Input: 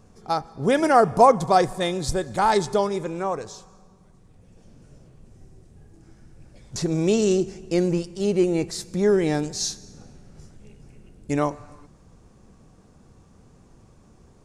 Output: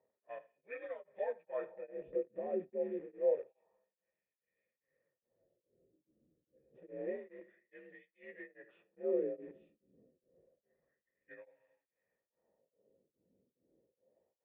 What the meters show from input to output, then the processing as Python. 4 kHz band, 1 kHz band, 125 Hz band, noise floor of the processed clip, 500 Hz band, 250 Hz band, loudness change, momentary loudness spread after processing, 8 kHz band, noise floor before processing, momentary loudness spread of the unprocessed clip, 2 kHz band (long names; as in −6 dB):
below −40 dB, −33.0 dB, −36.0 dB, below −85 dBFS, −16.0 dB, −24.0 dB, −17.5 dB, 22 LU, below −40 dB, −54 dBFS, 11 LU, −22.0 dB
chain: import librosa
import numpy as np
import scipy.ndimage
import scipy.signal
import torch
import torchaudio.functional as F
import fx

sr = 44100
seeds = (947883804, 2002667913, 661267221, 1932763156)

p1 = fx.partial_stretch(x, sr, pct=86)
p2 = fx.low_shelf(p1, sr, hz=180.0, db=4.0)
p3 = fx.filter_lfo_bandpass(p2, sr, shape='sine', hz=0.28, low_hz=270.0, high_hz=2600.0, q=2.1)
p4 = fx.quant_dither(p3, sr, seeds[0], bits=6, dither='none')
p5 = p3 + (p4 * librosa.db_to_amplitude(-9.0))
p6 = fx.formant_cascade(p5, sr, vowel='e')
p7 = p6 + fx.echo_single(p6, sr, ms=78, db=-18.5, dry=0)
p8 = p7 * np.abs(np.cos(np.pi * 2.4 * np.arange(len(p7)) / sr))
y = p8 * librosa.db_to_amplitude(1.5)